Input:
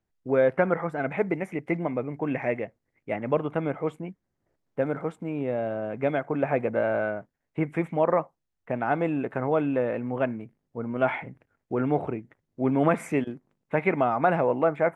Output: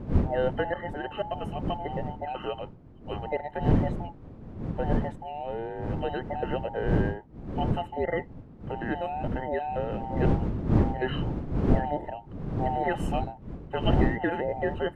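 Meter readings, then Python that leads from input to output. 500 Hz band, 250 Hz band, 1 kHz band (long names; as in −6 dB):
−5.0 dB, −1.5 dB, −1.5 dB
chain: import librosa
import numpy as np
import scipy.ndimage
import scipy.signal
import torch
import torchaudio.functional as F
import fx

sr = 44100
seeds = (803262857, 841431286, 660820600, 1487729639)

y = fx.band_invert(x, sr, width_hz=1000)
y = fx.dmg_wind(y, sr, seeds[0], corner_hz=210.0, level_db=-24.0)
y = y * 10.0 ** (-6.0 / 20.0)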